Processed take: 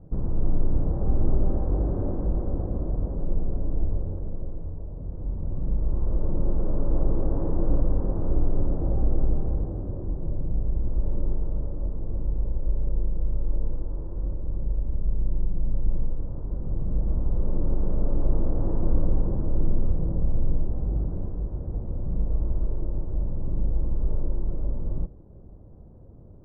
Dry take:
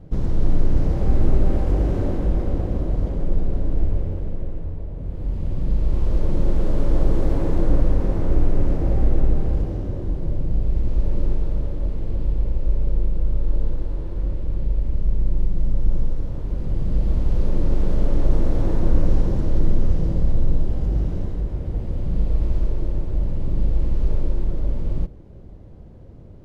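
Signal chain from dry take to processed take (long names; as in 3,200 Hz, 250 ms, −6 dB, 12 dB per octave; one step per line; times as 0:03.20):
low-pass filter 1,200 Hz 24 dB per octave
level −5 dB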